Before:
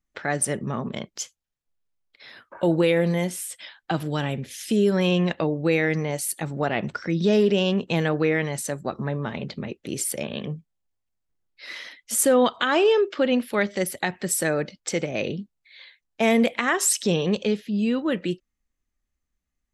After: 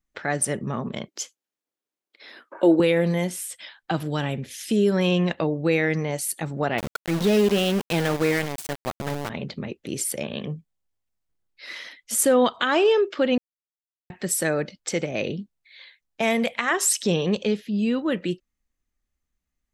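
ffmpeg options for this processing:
ffmpeg -i in.wav -filter_complex "[0:a]asettb=1/sr,asplit=3[link_01][link_02][link_03];[link_01]atrim=end=1.084[link_04];[link_02]atrim=start=1.08:end=2.8,asetpts=PTS-STARTPTS,afade=type=in:duration=0.004:curve=qsin,afade=type=out:start_time=1.716:duration=0.004:curve=qsin,highpass=frequency=310:width_type=q:width=2[link_05];[link_03]atrim=start=2.796[link_06];[link_04][link_05]acrossfade=duration=0.004:curve1=hsin:curve2=qsin[link_07];[link_07][link_06]acrossfade=duration=0.004:curve1=qsin:curve2=hsin,asettb=1/sr,asplit=3[link_08][link_09][link_10];[link_08]atrim=end=6.784[link_11];[link_09]atrim=start=6.78:end=9.3,asetpts=PTS-STARTPTS,afade=type=in:duration=0.004:curve=qsin,afade=type=out:start_time=2.516:duration=0.004:curve=qsin,aeval=exprs='val(0)*gte(abs(val(0)),0.0531)':channel_layout=same[link_12];[link_10]atrim=start=9.296[link_13];[link_11][link_12]acrossfade=duration=0.004:curve1=hsin:curve2=qsin[link_14];[link_14][link_13]acrossfade=duration=0.004:curve1=qsin:curve2=hsin,asettb=1/sr,asplit=3[link_15][link_16][link_17];[link_15]atrim=end=16.214[link_18];[link_16]atrim=start=16.21:end=16.71,asetpts=PTS-STARTPTS,afade=type=in:duration=0.004:curve=qsin,afade=type=out:start_time=0.496:duration=0.004:curve=qsin,equalizer=frequency=320:width_type=o:width=0.77:gain=-12[link_19];[link_17]atrim=start=16.706[link_20];[link_18][link_19]acrossfade=duration=0.004:curve1=hsin:curve2=qsin[link_21];[link_21][link_20]acrossfade=duration=0.004:curve1=qsin:curve2=hsin,asplit=3[link_22][link_23][link_24];[link_22]atrim=end=13.38,asetpts=PTS-STARTPTS,afade=type=out:start_time=13.376:duration=0.004:curve=hsin[link_25];[link_23]atrim=start=13.38:end=14.1,asetpts=PTS-STARTPTS,volume=0[link_26];[link_24]atrim=start=14.1,asetpts=PTS-STARTPTS,afade=type=in:duration=0.004:curve=hsin[link_27];[link_25][link_26][link_27]concat=n=3:v=0:a=1" out.wav

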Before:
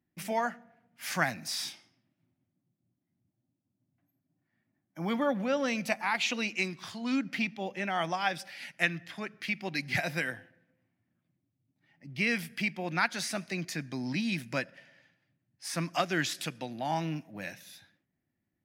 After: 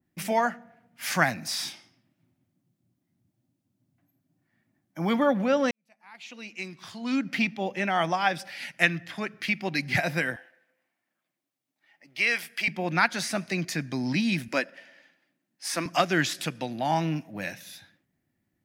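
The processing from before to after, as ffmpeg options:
ffmpeg -i in.wav -filter_complex "[0:a]asettb=1/sr,asplit=3[link_01][link_02][link_03];[link_01]atrim=end=10.364[link_04];[link_02]atrim=start=10.36:end=12.68,asetpts=PTS-STARTPTS,afade=type=in:duration=0.004:curve=qsin,afade=type=out:start_time=2.316:duration=0.004:curve=qsin,highpass=590[link_05];[link_03]atrim=start=12.676[link_06];[link_04][link_05]acrossfade=duration=0.004:curve1=hsin:curve2=qsin[link_07];[link_07][link_06]acrossfade=duration=0.004:curve1=qsin:curve2=hsin,asettb=1/sr,asplit=3[link_08][link_09][link_10];[link_08]atrim=end=14.484[link_11];[link_09]atrim=start=14.48:end=15.86,asetpts=PTS-STARTPTS,afade=type=in:duration=0.004:curve=qsin,afade=type=out:start_time=1.376:duration=0.004:curve=qsin,highpass=frequency=230:width=0.5412,highpass=frequency=230:width=1.3066[link_12];[link_10]atrim=start=15.856[link_13];[link_11][link_12]acrossfade=duration=0.004:curve1=hsin:curve2=qsin[link_14];[link_14][link_13]acrossfade=duration=0.004:curve1=qsin:curve2=hsin,asplit=2[link_15][link_16];[link_15]atrim=end=5.71,asetpts=PTS-STARTPTS,afade=type=out:start_time=5.706:duration=0.004:curve=hsin[link_17];[link_16]atrim=start=5.71,asetpts=PTS-STARTPTS,afade=type=in:duration=1.72:curve=qua[link_18];[link_17][link_18]concat=n=2:v=0:a=1,adynamicequalizer=threshold=0.00794:dfrequency=2000:dqfactor=0.7:tfrequency=2000:tqfactor=0.7:attack=5:release=100:ratio=0.375:range=2.5:mode=cutabove:tftype=highshelf,volume=6dB" out.wav

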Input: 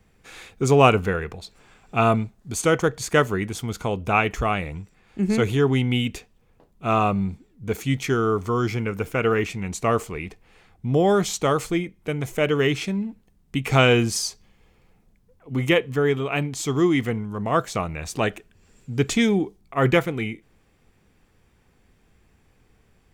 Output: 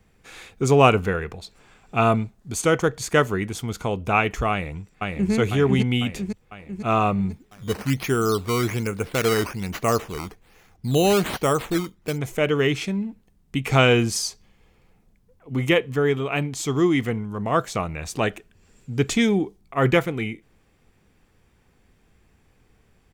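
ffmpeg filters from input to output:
ffmpeg -i in.wav -filter_complex "[0:a]asplit=2[link_01][link_02];[link_02]afade=type=in:start_time=4.51:duration=0.01,afade=type=out:start_time=5.32:duration=0.01,aecho=0:1:500|1000|1500|2000|2500|3000|3500|4000|4500:0.794328|0.476597|0.285958|0.171575|0.102945|0.061767|0.0370602|0.0222361|0.0133417[link_03];[link_01][link_03]amix=inputs=2:normalize=0,asplit=3[link_04][link_05][link_06];[link_04]afade=type=out:start_time=7.31:duration=0.02[link_07];[link_05]acrusher=samples=9:mix=1:aa=0.000001:lfo=1:lforange=9:lforate=1.2,afade=type=in:start_time=7.31:duration=0.02,afade=type=out:start_time=12.17:duration=0.02[link_08];[link_06]afade=type=in:start_time=12.17:duration=0.02[link_09];[link_07][link_08][link_09]amix=inputs=3:normalize=0" out.wav

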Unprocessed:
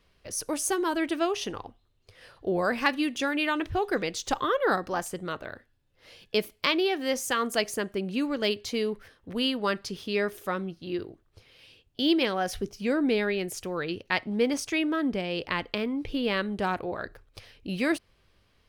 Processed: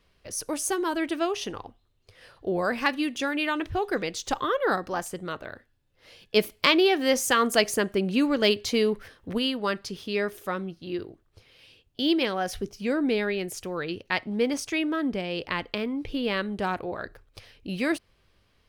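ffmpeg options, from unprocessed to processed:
ffmpeg -i in.wav -filter_complex "[0:a]asplit=3[link_01][link_02][link_03];[link_01]afade=type=out:start_time=6.35:duration=0.02[link_04];[link_02]acontrast=33,afade=type=in:start_time=6.35:duration=0.02,afade=type=out:start_time=9.37:duration=0.02[link_05];[link_03]afade=type=in:start_time=9.37:duration=0.02[link_06];[link_04][link_05][link_06]amix=inputs=3:normalize=0" out.wav

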